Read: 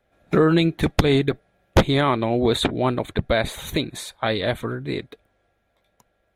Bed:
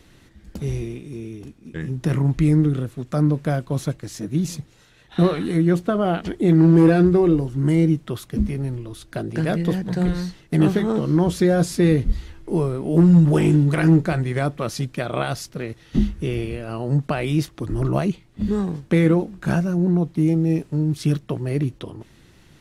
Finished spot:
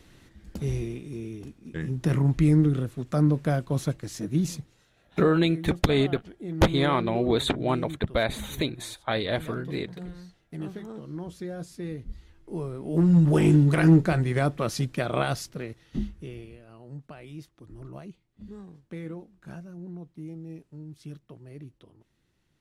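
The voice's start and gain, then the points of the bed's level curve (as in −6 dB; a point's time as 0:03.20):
4.85 s, −4.5 dB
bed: 0:04.48 −3 dB
0:05.24 −18.5 dB
0:12.01 −18.5 dB
0:13.48 −2 dB
0:15.31 −2 dB
0:16.74 −21 dB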